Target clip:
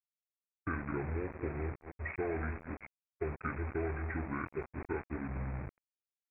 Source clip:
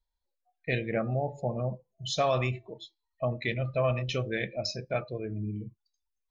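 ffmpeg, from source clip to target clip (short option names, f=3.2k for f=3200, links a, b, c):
-filter_complex "[0:a]asplit=2[a][b];[b]adelay=216,lowpass=f=3.1k:p=1,volume=-15dB,asplit=2[c][d];[d]adelay=216,lowpass=f=3.1k:p=1,volume=0.21[e];[a][c][e]amix=inputs=3:normalize=0,acompressor=threshold=-37dB:ratio=3,aresample=8000,acrusher=bits=6:mix=0:aa=0.000001,aresample=44100,agate=range=-33dB:threshold=-38dB:ratio=3:detection=peak,asetrate=27781,aresample=44100,atempo=1.5874,volume=1dB"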